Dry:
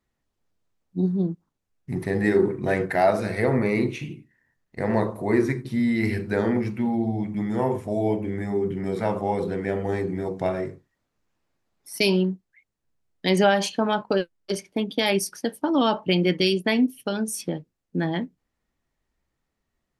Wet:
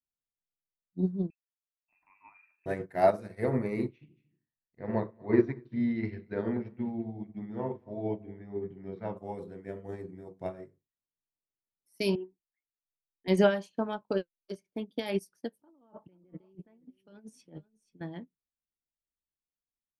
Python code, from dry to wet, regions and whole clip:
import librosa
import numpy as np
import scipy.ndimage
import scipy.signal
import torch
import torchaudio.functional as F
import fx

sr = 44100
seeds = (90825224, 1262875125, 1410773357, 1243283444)

y = fx.chain(x, sr, fx.freq_invert(carrier_hz=2800),
    fx.fixed_phaser(hz=1200.0, stages=4), at=(1.3, 2.66))
y = fx.chain(y, sr, fx.lowpass(hz=4200.0, slope=24),
    fx.echo_single(ms=230, db=-14.5), at=(3.89, 9.17))
y = fx.chain(y, sr, fx.lowpass(hz=2000.0, slope=12),
    fx.fixed_phaser(hz=870.0, stages=8), at=(12.15, 13.28))
y = fx.chain(y, sr, fx.env_lowpass_down(base_hz=1200.0, full_db=-18.0),
    fx.over_compress(threshold_db=-33.0, ratio=-1.0),
    fx.echo_single(ms=481, db=-15.0), at=(15.59, 18.01))
y = fx.peak_eq(y, sr, hz=3300.0, db=-6.0, octaves=2.9)
y = fx.notch(y, sr, hz=790.0, q=17.0)
y = fx.upward_expand(y, sr, threshold_db=-34.0, expansion=2.5)